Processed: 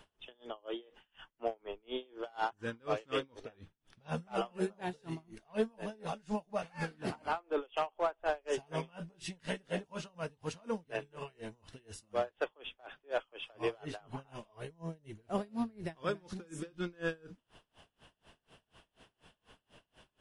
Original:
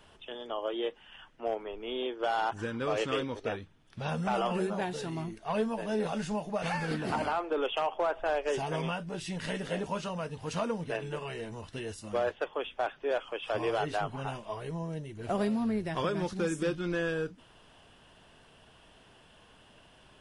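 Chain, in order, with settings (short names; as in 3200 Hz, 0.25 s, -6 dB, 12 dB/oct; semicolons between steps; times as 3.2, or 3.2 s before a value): dB-linear tremolo 4.1 Hz, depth 31 dB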